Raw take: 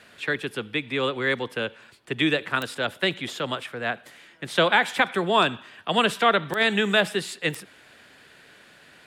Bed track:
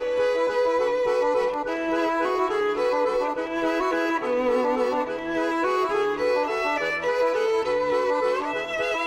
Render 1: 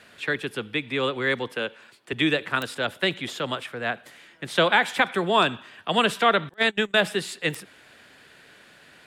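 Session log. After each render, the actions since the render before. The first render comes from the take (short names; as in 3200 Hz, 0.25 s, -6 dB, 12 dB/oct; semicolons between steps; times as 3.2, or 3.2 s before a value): 1.52–2.13 Bessel high-pass 200 Hz; 6.49–6.95 gate -23 dBFS, range -29 dB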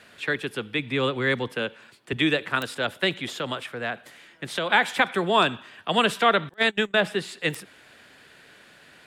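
0.79–2.17 tone controls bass +6 dB, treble 0 dB; 3.24–4.7 compressor, threshold -23 dBFS; 6.88–7.36 high shelf 3900 Hz -> 6100 Hz -8.5 dB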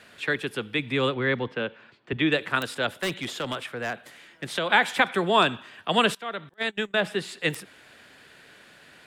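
1.14–2.32 air absorption 200 m; 3.02–4.47 hard clip -24 dBFS; 6.15–7.35 fade in, from -20.5 dB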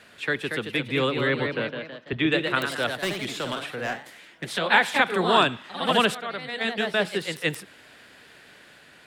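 echoes that change speed 0.248 s, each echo +1 st, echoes 3, each echo -6 dB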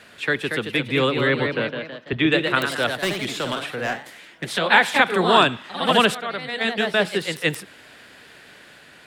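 gain +4 dB; limiter -3 dBFS, peak gain reduction 1 dB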